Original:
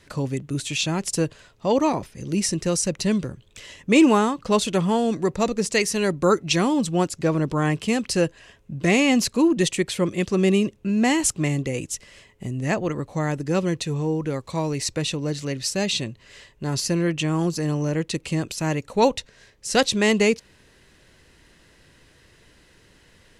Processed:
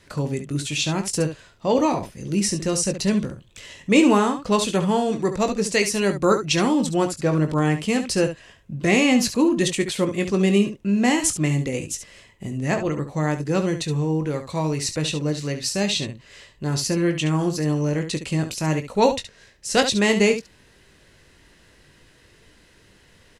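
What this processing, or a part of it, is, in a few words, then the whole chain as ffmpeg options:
slapback doubling: -filter_complex "[0:a]asplit=3[link_01][link_02][link_03];[link_02]adelay=20,volume=-8.5dB[link_04];[link_03]adelay=70,volume=-10dB[link_05];[link_01][link_04][link_05]amix=inputs=3:normalize=0"

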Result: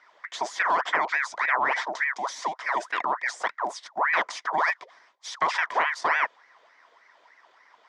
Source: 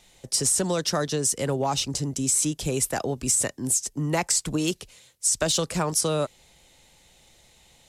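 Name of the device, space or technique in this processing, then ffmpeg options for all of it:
voice changer toy: -filter_complex "[0:a]asettb=1/sr,asplit=3[link_01][link_02][link_03];[link_01]atrim=end=2.134[link_04];[link_02]atrim=start=2.13:end=2.77,asetpts=PTS-STARTPTS,afade=type=in:duration=0.004:curve=qsin,afade=type=out:start_time=0.636:duration=0.004:curve=qsin,lowshelf=frequency=170:gain=-10.5[link_05];[link_03]atrim=start=2.766[link_06];[link_04][link_05]acrossfade=duration=0.004:curve1=hsin:curve2=qsin[link_07];[link_07][link_06]acrossfade=duration=0.004:curve1=qsin:curve2=hsin,aeval=exprs='val(0)*sin(2*PI*1300*n/s+1300*0.65/3.4*sin(2*PI*3.4*n/s))':channel_layout=same,highpass=460,equalizer=frequency=670:width_type=q:width=4:gain=4,equalizer=frequency=1000:width_type=q:width=4:gain=9,equalizer=frequency=1900:width_type=q:width=4:gain=7,equalizer=frequency=2700:width_type=q:width=4:gain=-9,equalizer=frequency=4200:width_type=q:width=4:gain=-8,lowpass=frequency=4300:width=0.5412,lowpass=frequency=4300:width=1.3066,volume=1.5dB"

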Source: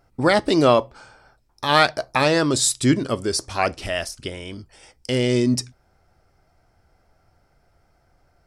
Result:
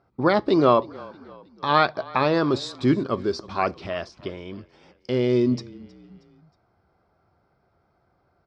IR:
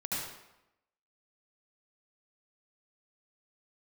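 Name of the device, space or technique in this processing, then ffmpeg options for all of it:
frequency-shifting delay pedal into a guitar cabinet: -filter_complex "[0:a]asplit=4[link_01][link_02][link_03][link_04];[link_02]adelay=316,afreqshift=-30,volume=-22dB[link_05];[link_03]adelay=632,afreqshift=-60,volume=-28dB[link_06];[link_04]adelay=948,afreqshift=-90,volume=-34dB[link_07];[link_01][link_05][link_06][link_07]amix=inputs=4:normalize=0,highpass=83,equalizer=frequency=190:width_type=q:width=4:gain=4,equalizer=frequency=380:width_type=q:width=4:gain=5,equalizer=frequency=1100:width_type=q:width=4:gain=6,equalizer=frequency=1900:width_type=q:width=4:gain=-5,equalizer=frequency=2900:width_type=q:width=4:gain=-7,lowpass=frequency=4200:width=0.5412,lowpass=frequency=4200:width=1.3066,asettb=1/sr,asplit=3[link_08][link_09][link_10];[link_08]atrim=end=1.734[link_11];[link_09]atrim=start=1.73:end=2.34,asetpts=PTS-STARTPTS,afade=type=in:duration=0.004:curve=qsin,afade=type=out:start_time=0.606:duration=0.004:curve=qsin,lowpass=5300[link_12];[link_10]atrim=start=2.336[link_13];[link_11][link_12]acrossfade=duration=0.004:curve1=hsin:curve2=qsin[link_14];[link_14][link_13]acrossfade=duration=0.004:curve1=qsin:curve2=hsin,volume=-3.5dB"

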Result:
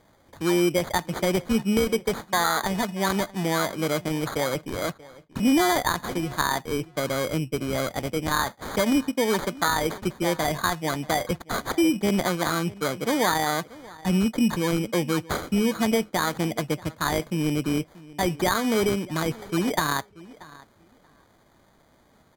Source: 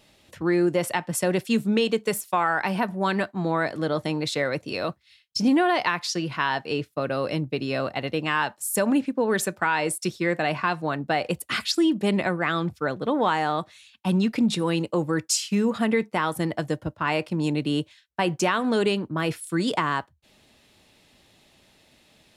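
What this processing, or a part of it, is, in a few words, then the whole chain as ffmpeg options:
crushed at another speed: -filter_complex "[0:a]equalizer=frequency=12000:width_type=o:width=1.8:gain=-5.5,asetrate=55125,aresample=44100,acrusher=samples=13:mix=1:aa=0.000001,asetrate=35280,aresample=44100,asplit=2[link_01][link_02];[link_02]adelay=633,lowpass=frequency=4700:poles=1,volume=-20.5dB,asplit=2[link_03][link_04];[link_04]adelay=633,lowpass=frequency=4700:poles=1,volume=0.17[link_05];[link_01][link_03][link_05]amix=inputs=3:normalize=0"

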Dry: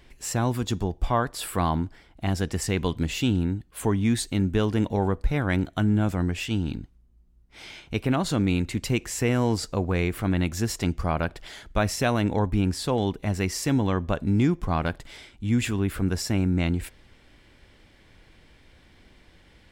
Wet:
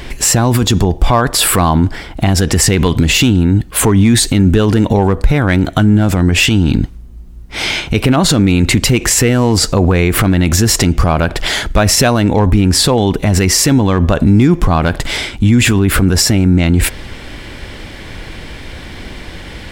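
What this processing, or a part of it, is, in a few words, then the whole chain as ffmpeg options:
loud club master: -af "acompressor=threshold=-28dB:ratio=1.5,asoftclip=type=hard:threshold=-17.5dB,alimiter=level_in=27dB:limit=-1dB:release=50:level=0:latency=1,volume=-1dB"

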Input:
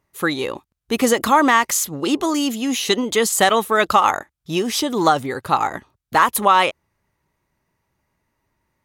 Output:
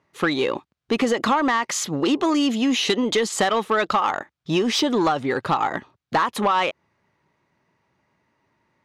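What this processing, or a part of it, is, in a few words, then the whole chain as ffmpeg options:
AM radio: -af "highpass=130,lowpass=4500,acompressor=threshold=-20dB:ratio=6,asoftclip=type=tanh:threshold=-16.5dB,volume=5dB"

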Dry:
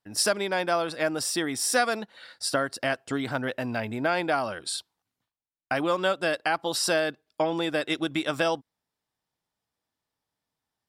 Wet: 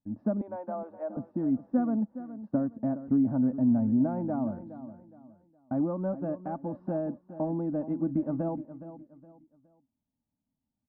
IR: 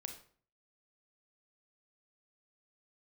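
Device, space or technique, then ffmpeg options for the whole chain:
under water: -filter_complex "[0:a]lowpass=frequency=820:width=0.5412,lowpass=frequency=820:width=1.3066,equalizer=frequency=430:width_type=o:width=0.26:gain=4.5,asettb=1/sr,asplit=3[link_01][link_02][link_03];[link_01]atrim=end=0.414[link_04];[link_02]atrim=start=0.41:end=1.17,asetpts=PTS-STARTPTS,afade=type=in:duration=0.004:curve=qsin,afade=type=out:start_time=0.756:duration=0.004:curve=qsin,highpass=frequency=470:width=0.5412,highpass=frequency=470:width=1.3066[link_05];[link_03]atrim=start=1.166[link_06];[link_04][link_05]acrossfade=duration=0.004:curve1=hsin:curve2=qsin[link_07];[link_07][link_06]acrossfade=duration=0.004:curve1=qsin:curve2=hsin,lowshelf=frequency=310:width_type=q:width=3:gain=9,aecho=1:1:3.4:0.31,aecho=1:1:416|832|1248:0.211|0.0676|0.0216,volume=-5.5dB"

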